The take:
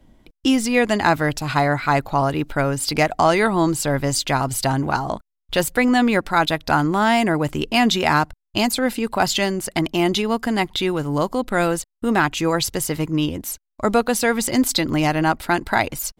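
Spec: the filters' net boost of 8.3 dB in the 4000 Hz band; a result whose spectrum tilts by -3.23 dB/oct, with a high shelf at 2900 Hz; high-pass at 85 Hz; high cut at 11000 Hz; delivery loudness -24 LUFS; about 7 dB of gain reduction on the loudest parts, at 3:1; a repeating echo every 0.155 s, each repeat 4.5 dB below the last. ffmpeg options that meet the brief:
-af "highpass=85,lowpass=11k,highshelf=f=2.9k:g=3.5,equalizer=f=4k:t=o:g=7.5,acompressor=threshold=-19dB:ratio=3,aecho=1:1:155|310|465|620|775|930|1085|1240|1395:0.596|0.357|0.214|0.129|0.0772|0.0463|0.0278|0.0167|0.01,volume=-3.5dB"

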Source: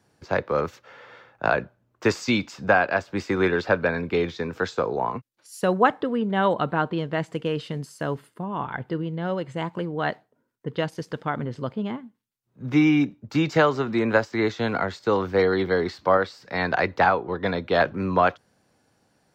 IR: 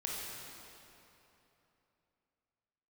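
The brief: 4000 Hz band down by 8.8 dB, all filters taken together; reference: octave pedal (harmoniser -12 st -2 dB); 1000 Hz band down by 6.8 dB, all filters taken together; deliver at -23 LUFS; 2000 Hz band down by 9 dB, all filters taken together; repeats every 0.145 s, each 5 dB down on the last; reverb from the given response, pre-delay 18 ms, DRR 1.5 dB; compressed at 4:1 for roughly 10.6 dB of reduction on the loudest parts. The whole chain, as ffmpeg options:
-filter_complex "[0:a]equalizer=f=1k:t=o:g=-7.5,equalizer=f=2k:t=o:g=-7.5,equalizer=f=4k:t=o:g=-8,acompressor=threshold=-29dB:ratio=4,aecho=1:1:145|290|435|580|725|870|1015:0.562|0.315|0.176|0.0988|0.0553|0.031|0.0173,asplit=2[a][b];[1:a]atrim=start_sample=2205,adelay=18[c];[b][c]afir=irnorm=-1:irlink=0,volume=-4dB[d];[a][d]amix=inputs=2:normalize=0,asplit=2[e][f];[f]asetrate=22050,aresample=44100,atempo=2,volume=-2dB[g];[e][g]amix=inputs=2:normalize=0,volume=5.5dB"

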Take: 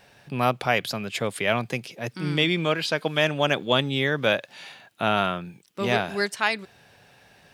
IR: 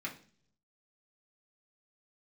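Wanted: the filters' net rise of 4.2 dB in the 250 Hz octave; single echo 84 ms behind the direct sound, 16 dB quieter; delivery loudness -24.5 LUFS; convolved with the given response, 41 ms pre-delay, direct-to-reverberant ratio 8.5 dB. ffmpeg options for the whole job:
-filter_complex "[0:a]equalizer=f=250:t=o:g=5.5,aecho=1:1:84:0.158,asplit=2[a][b];[1:a]atrim=start_sample=2205,adelay=41[c];[b][c]afir=irnorm=-1:irlink=0,volume=-10dB[d];[a][d]amix=inputs=2:normalize=0,volume=-1.5dB"

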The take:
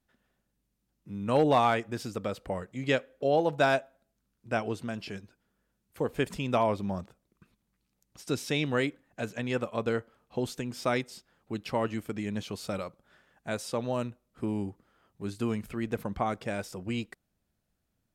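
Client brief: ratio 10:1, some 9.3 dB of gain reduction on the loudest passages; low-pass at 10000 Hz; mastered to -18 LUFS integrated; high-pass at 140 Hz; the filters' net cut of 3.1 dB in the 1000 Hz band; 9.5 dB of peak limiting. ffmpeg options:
-af "highpass=140,lowpass=10k,equalizer=f=1k:t=o:g=-4.5,acompressor=threshold=-30dB:ratio=10,volume=23dB,alimiter=limit=-5.5dB:level=0:latency=1"

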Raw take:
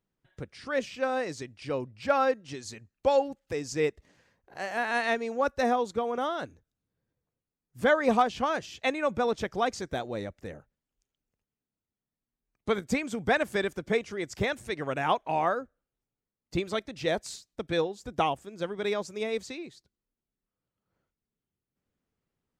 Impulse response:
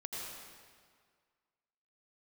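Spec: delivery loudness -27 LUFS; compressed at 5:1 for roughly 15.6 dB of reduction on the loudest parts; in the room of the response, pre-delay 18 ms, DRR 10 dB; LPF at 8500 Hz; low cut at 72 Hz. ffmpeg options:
-filter_complex "[0:a]highpass=72,lowpass=8.5k,acompressor=threshold=-37dB:ratio=5,asplit=2[a][b];[1:a]atrim=start_sample=2205,adelay=18[c];[b][c]afir=irnorm=-1:irlink=0,volume=-10.5dB[d];[a][d]amix=inputs=2:normalize=0,volume=14dB"

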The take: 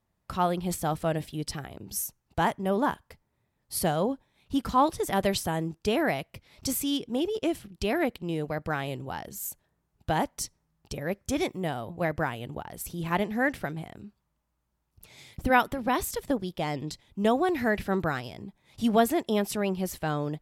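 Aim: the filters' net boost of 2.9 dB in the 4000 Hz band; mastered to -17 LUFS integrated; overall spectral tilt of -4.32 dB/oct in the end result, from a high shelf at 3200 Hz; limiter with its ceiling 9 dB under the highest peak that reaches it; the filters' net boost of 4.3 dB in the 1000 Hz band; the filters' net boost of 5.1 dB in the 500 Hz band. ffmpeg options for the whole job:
-af "equalizer=f=500:t=o:g=5.5,equalizer=f=1k:t=o:g=3.5,highshelf=f=3.2k:g=-4,equalizer=f=4k:t=o:g=6.5,volume=10.5dB,alimiter=limit=-3.5dB:level=0:latency=1"

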